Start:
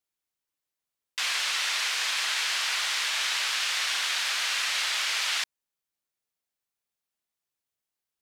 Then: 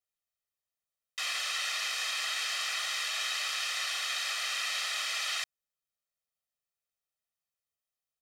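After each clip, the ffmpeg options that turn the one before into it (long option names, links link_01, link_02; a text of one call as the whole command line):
ffmpeg -i in.wav -af "aecho=1:1:1.6:0.94,volume=-8dB" out.wav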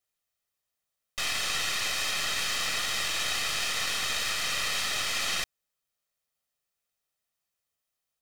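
ffmpeg -i in.wav -af "aeval=exprs='clip(val(0),-1,0.00631)':channel_layout=same,volume=6.5dB" out.wav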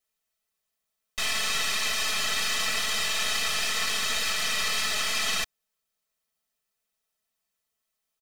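ffmpeg -i in.wav -af "aecho=1:1:4.6:0.82" out.wav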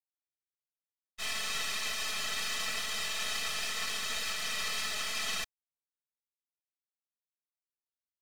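ffmpeg -i in.wav -af "agate=range=-33dB:threshold=-24dB:ratio=3:detection=peak,volume=-6dB" out.wav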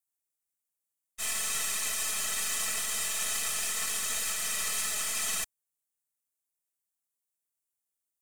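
ffmpeg -i in.wav -af "highshelf=frequency=6100:width_type=q:width=1.5:gain=10" out.wav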